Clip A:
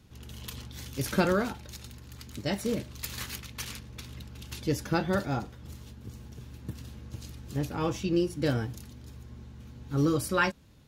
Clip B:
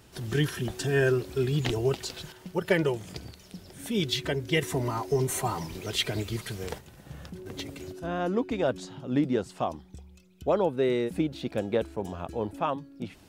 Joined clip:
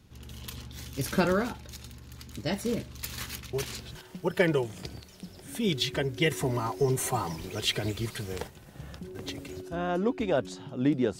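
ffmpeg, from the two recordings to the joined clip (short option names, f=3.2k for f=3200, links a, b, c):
-filter_complex "[1:a]asplit=2[a][b];[0:a]apad=whole_dur=11.19,atrim=end=11.19,atrim=end=3.952[c];[b]atrim=start=2.258:end=9.5[d];[a]atrim=start=1.84:end=2.26,asetpts=PTS-STARTPTS,volume=-6.5dB,afade=t=in:d=0.004:c=hsin,afade=t=out:st=0.416:d=0.004:c=hsin,adelay=155673S[e];[c][d]acrossfade=d=0.004:c1=hsin:c2=hsin[f];[f][e]amix=inputs=2:normalize=0"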